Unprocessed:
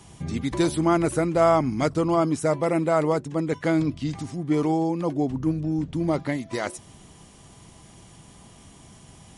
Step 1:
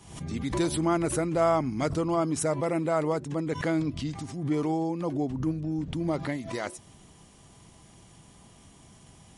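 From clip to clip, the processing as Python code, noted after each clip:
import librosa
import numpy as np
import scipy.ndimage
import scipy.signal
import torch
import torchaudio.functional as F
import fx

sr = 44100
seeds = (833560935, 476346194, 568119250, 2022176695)

y = fx.pre_swell(x, sr, db_per_s=90.0)
y = y * 10.0 ** (-5.0 / 20.0)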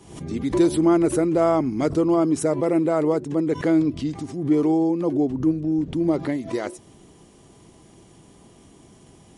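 y = fx.peak_eq(x, sr, hz=360.0, db=10.5, octaves=1.3)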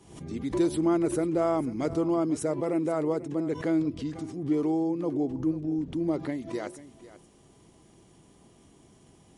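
y = x + 10.0 ** (-16.5 / 20.0) * np.pad(x, (int(492 * sr / 1000.0), 0))[:len(x)]
y = y * 10.0 ** (-7.0 / 20.0)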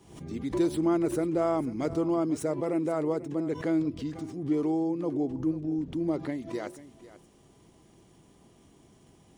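y = scipy.signal.medfilt(x, 3)
y = y * 10.0 ** (-1.0 / 20.0)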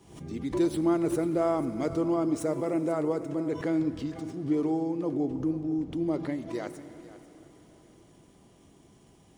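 y = fx.rev_plate(x, sr, seeds[0], rt60_s=4.5, hf_ratio=0.95, predelay_ms=0, drr_db=12.0)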